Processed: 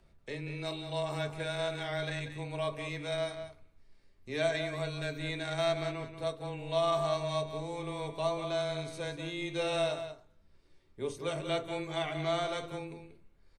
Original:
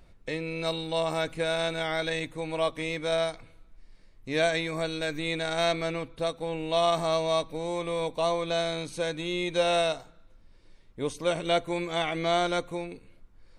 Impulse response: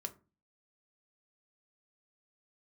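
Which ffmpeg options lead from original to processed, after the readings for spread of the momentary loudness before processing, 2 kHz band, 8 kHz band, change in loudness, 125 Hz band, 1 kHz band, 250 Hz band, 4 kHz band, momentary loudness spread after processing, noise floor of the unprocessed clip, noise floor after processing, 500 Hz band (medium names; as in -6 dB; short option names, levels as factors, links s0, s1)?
8 LU, -6.5 dB, -7.0 dB, -6.0 dB, -1.0 dB, -6.5 dB, -6.5 dB, -7.0 dB, 9 LU, -56 dBFS, -63 dBFS, -6.0 dB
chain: -filter_complex "[0:a]asplit=2[s0][s1];[s1]adelay=186.6,volume=0.355,highshelf=f=4000:g=-4.2[s2];[s0][s2]amix=inputs=2:normalize=0,afreqshift=-13[s3];[1:a]atrim=start_sample=2205[s4];[s3][s4]afir=irnorm=-1:irlink=0,volume=0.596"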